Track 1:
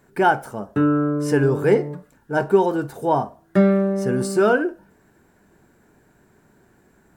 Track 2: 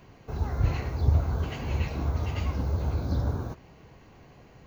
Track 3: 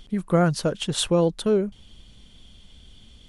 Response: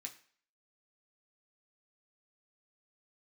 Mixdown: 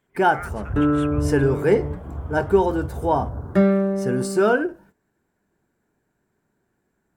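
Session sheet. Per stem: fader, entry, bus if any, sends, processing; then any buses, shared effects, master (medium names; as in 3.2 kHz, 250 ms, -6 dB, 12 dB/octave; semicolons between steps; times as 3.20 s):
-1.0 dB, 0.00 s, no send, endings held to a fixed fall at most 330 dB/s
-3.5 dB, 0.10 s, no send, steep low-pass 1.6 kHz
-8.5 dB, 0.00 s, send -9 dB, elliptic high-pass 1.2 kHz; resonant high shelf 3 kHz -12.5 dB, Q 3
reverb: on, RT60 0.50 s, pre-delay 3 ms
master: gate -49 dBFS, range -14 dB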